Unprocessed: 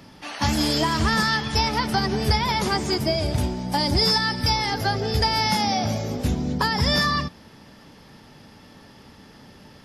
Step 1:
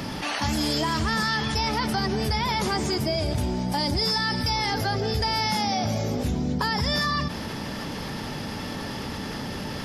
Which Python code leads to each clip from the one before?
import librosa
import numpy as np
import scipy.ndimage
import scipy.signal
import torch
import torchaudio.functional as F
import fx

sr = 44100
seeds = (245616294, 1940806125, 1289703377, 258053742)

y = fx.env_flatten(x, sr, amount_pct=70)
y = F.gain(torch.from_numpy(y), -7.0).numpy()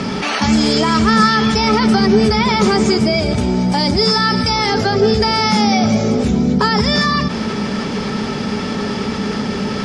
y = scipy.signal.sosfilt(scipy.signal.butter(6, 8600.0, 'lowpass', fs=sr, output='sos'), x)
y = fx.low_shelf(y, sr, hz=230.0, db=-4.0)
y = fx.small_body(y, sr, hz=(210.0, 410.0, 1300.0, 2300.0), ring_ms=70, db=12)
y = F.gain(torch.from_numpy(y), 8.5).numpy()